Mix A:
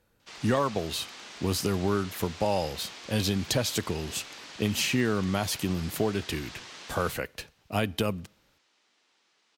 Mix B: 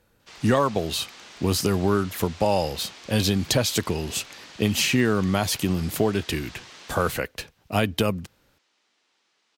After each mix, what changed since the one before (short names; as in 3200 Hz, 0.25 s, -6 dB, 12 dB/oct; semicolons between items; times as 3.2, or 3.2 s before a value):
speech +5.5 dB; reverb: off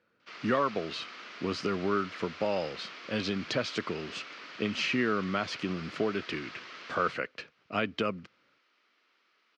speech -6.5 dB; master: add speaker cabinet 200–4600 Hz, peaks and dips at 830 Hz -8 dB, 1300 Hz +7 dB, 2200 Hz +3 dB, 3700 Hz -5 dB